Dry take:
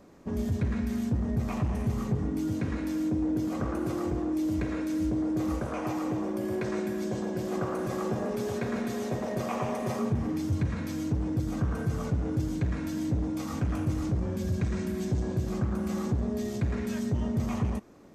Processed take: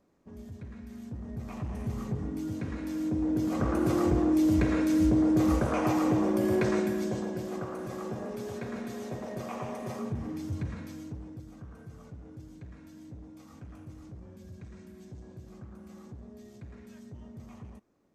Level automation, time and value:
0:00.79 −15 dB
0:01.93 −4.5 dB
0:02.77 −4.5 dB
0:03.95 +5 dB
0:06.64 +5 dB
0:07.67 −6 dB
0:10.70 −6 dB
0:11.56 −17.5 dB

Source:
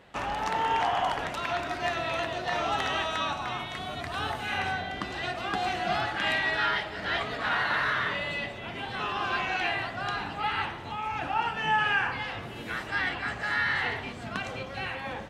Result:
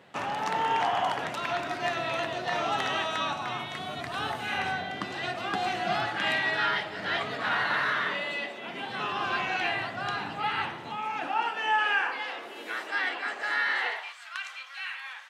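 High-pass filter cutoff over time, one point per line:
high-pass filter 24 dB per octave
0:07.60 110 Hz
0:08.48 250 Hz
0:09.13 110 Hz
0:10.67 110 Hz
0:11.65 320 Hz
0:13.78 320 Hz
0:14.18 1,200 Hz

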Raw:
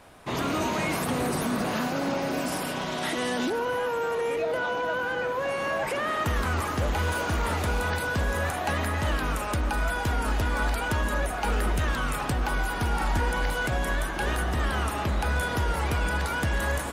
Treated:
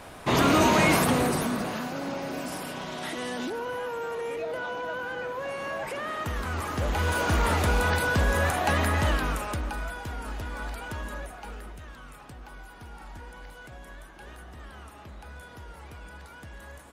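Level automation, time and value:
0:00.93 +7 dB
0:01.80 −5 dB
0:06.45 −5 dB
0:07.33 +3 dB
0:09.00 +3 dB
0:10.00 −9 dB
0:11.11 −9 dB
0:11.80 −18 dB

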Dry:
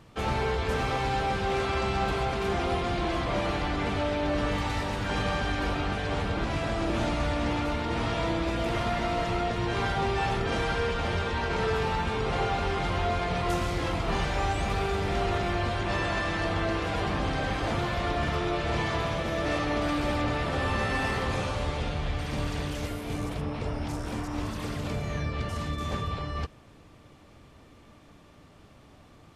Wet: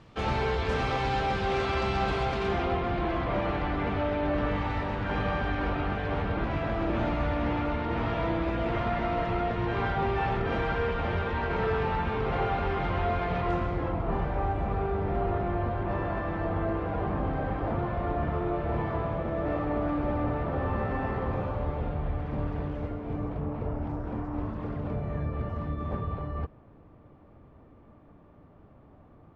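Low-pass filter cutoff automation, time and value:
0:02.36 5,200 Hz
0:02.80 2,200 Hz
0:13.38 2,200 Hz
0:13.96 1,100 Hz

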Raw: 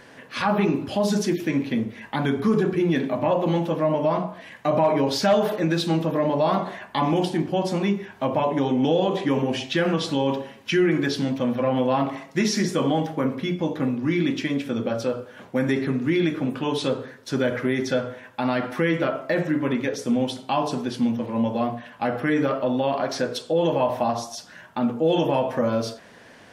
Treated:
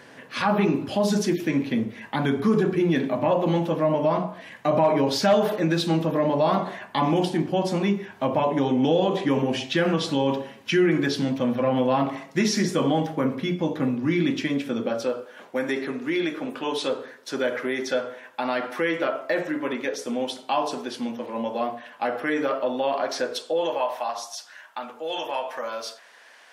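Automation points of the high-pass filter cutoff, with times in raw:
0:14.32 93 Hz
0:15.29 360 Hz
0:23.40 360 Hz
0:24.00 870 Hz

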